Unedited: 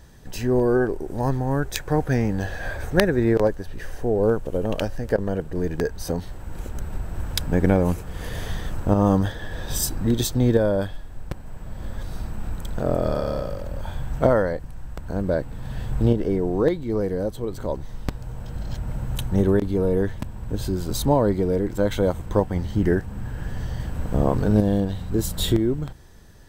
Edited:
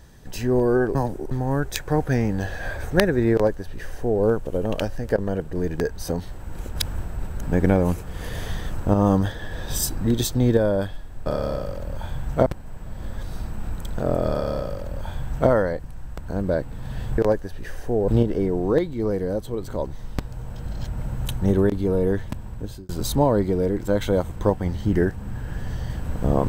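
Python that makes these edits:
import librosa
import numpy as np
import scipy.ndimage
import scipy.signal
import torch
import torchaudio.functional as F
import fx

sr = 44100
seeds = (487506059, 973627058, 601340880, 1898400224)

y = fx.edit(x, sr, fx.reverse_span(start_s=0.95, length_s=0.36),
    fx.duplicate(start_s=3.33, length_s=0.9, to_s=15.98),
    fx.reverse_span(start_s=6.76, length_s=0.67),
    fx.duplicate(start_s=13.1, length_s=1.2, to_s=11.26),
    fx.fade_out_span(start_s=20.36, length_s=0.43), tone=tone)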